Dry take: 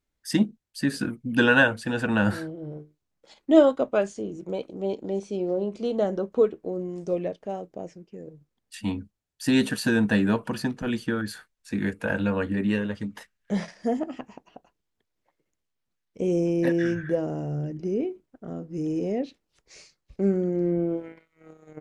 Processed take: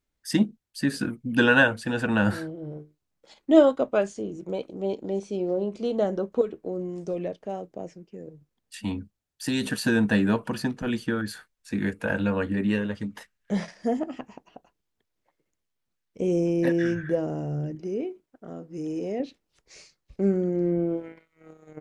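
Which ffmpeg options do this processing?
-filter_complex "[0:a]asettb=1/sr,asplit=3[a][b][c];[a]atrim=end=6.414[d];[b]atrim=start=6.41:end=9.67,asetpts=PTS-STARTPTS,afade=t=in:d=0.004:c=qsin,afade=t=out:st=3.256:d=0.004:c=qsin,acrossover=split=120|3000[e][f][g];[f]acompressor=threshold=-24dB:ratio=6:attack=3.2:release=140:knee=2.83:detection=peak[h];[e][h][g]amix=inputs=3:normalize=0[i];[c]atrim=start=9.666[j];[d][i]acrossfade=d=0.004:c1=hsin:c2=qsin[k];[k][j]acrossfade=d=0.004:c1=qsin:c2=hsin,asettb=1/sr,asplit=3[l][m][n];[l]atrim=end=17.754[o];[m]atrim=start=17.75:end=19.2,asetpts=PTS-STARTPTS,afade=t=in:d=0.004:c=qsin,afade=t=out:st=1.446:d=0.004:c=qsin,lowshelf=f=240:g=-9[p];[n]atrim=start=19.196[q];[o][p]acrossfade=d=0.004:c1=hsin:c2=qsin[r];[r][q]acrossfade=d=0.004:c1=qsin:c2=hsin"

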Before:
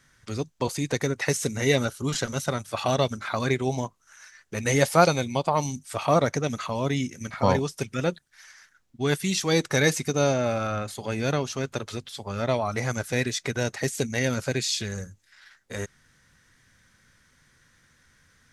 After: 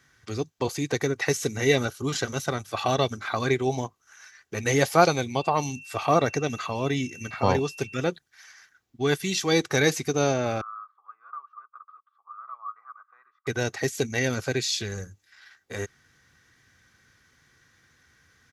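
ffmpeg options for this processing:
-filter_complex "[0:a]asettb=1/sr,asplit=3[a][b][c];[a]atrim=end=5.414[d];[b]atrim=start=5.41:end=7.99,asetpts=PTS-STARTPTS,afade=t=in:d=0.004:c=qsin,afade=t=out:st=2.576:d=0.004:c=qsin,aeval=exprs='val(0)+0.00562*sin(2*PI*2700*n/s)':c=same[e];[c]atrim=start=7.986[f];[d][e]acrossfade=d=0.004:c1=hsin:c2=qsin[g];[g][f]acrossfade=d=0.004:c1=qsin:c2=hsin,asettb=1/sr,asplit=3[h][i][j];[h]atrim=end=10.614[k];[i]atrim=start=10.61:end=13.47,asetpts=PTS-STARTPTS,afade=t=in:d=0.004:c=qsin,afade=t=out:st=2.856:d=0.004:c=qsin,asuperpass=centerf=1200:order=4:qfactor=6.9[l];[j]atrim=start=13.466[m];[k][l]acrossfade=d=0.004:c1=hsin:c2=qsin[n];[n][m]acrossfade=d=0.004:c1=qsin:c2=hsin,highpass=69,equalizer=f=8.9k:w=3.6:g=-11,aecho=1:1:2.6:0.34"

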